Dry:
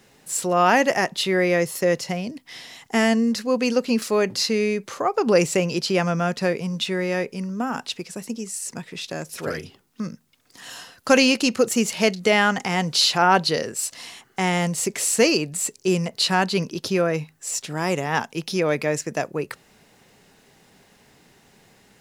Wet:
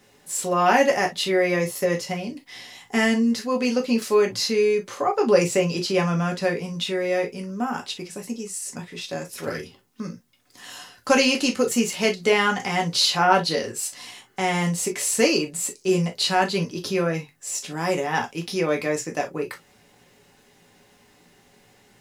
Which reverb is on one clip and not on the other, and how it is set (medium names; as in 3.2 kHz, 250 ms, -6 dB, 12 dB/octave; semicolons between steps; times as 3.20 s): gated-style reverb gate 80 ms falling, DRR 1 dB; trim -3.5 dB